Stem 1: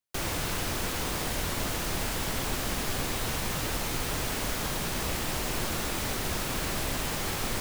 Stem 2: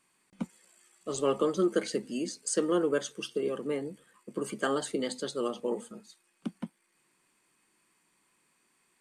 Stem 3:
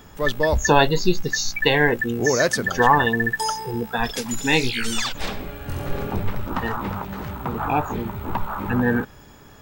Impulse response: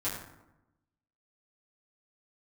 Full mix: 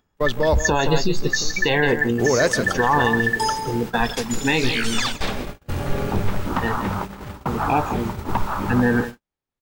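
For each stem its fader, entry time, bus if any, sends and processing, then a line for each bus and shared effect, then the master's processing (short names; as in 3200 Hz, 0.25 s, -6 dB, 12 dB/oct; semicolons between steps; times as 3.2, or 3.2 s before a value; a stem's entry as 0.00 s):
-7.0 dB, 2.05 s, no bus, no send, no echo send, high shelf 7200 Hz -8 dB
-1.5 dB, 0.00 s, bus A, no send, echo send -13 dB, tone controls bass +14 dB, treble +5 dB; compressor 6:1, threshold -33 dBFS, peak gain reduction 14.5 dB
+3.0 dB, 0.00 s, bus A, no send, echo send -14 dB, dry
bus A: 0.0 dB, high shelf 7100 Hz -7 dB; limiter -9 dBFS, peak gain reduction 9.5 dB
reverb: off
echo: echo 0.167 s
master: gate -26 dBFS, range -52 dB; upward compressor, threshold -51 dBFS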